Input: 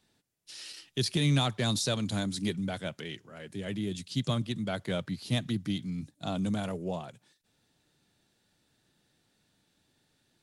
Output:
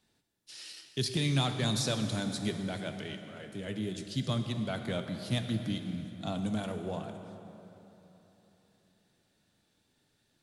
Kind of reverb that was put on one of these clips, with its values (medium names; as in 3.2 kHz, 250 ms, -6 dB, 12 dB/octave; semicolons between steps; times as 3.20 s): plate-style reverb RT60 3.5 s, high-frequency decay 0.65×, DRR 6 dB; trim -2.5 dB